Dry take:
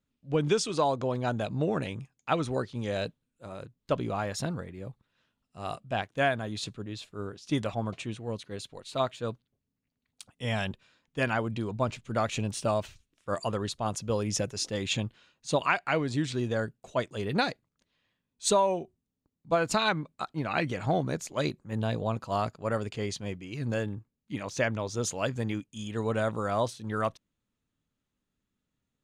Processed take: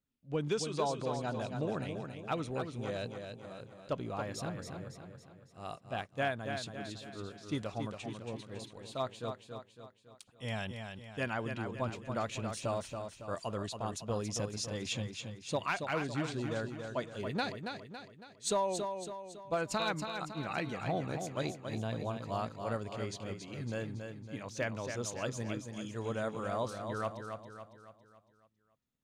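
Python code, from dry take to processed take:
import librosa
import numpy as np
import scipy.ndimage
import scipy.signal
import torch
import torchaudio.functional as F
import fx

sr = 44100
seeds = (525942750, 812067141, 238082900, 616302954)

y = fx.clip_asym(x, sr, top_db=-17.0, bottom_db=-16.0)
y = fx.echo_feedback(y, sr, ms=278, feedback_pct=48, wet_db=-6.5)
y = F.gain(torch.from_numpy(y), -7.5).numpy()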